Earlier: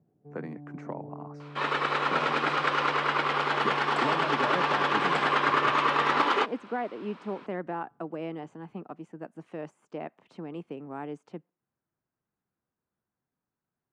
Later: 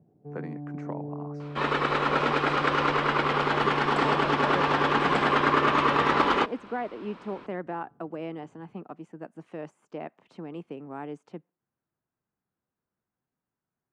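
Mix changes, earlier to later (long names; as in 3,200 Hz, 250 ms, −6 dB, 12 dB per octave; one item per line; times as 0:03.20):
first sound +7.0 dB
second sound: remove high-pass filter 620 Hz 6 dB per octave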